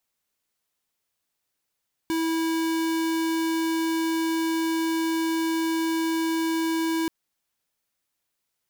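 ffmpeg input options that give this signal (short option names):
-f lavfi -i "aevalsrc='0.0562*(2*lt(mod(326*t,1),0.5)-1)':d=4.98:s=44100"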